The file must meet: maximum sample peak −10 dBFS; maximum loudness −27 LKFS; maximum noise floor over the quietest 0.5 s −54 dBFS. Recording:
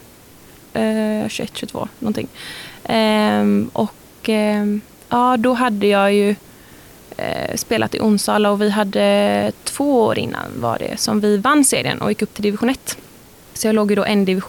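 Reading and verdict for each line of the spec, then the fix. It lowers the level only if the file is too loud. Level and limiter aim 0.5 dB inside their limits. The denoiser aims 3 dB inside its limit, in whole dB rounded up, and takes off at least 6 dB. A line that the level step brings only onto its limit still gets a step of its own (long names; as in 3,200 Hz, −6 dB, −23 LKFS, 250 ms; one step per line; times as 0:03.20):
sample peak −5.0 dBFS: out of spec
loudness −18.0 LKFS: out of spec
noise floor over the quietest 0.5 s −44 dBFS: out of spec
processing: broadband denoise 6 dB, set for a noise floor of −44 dBFS
level −9.5 dB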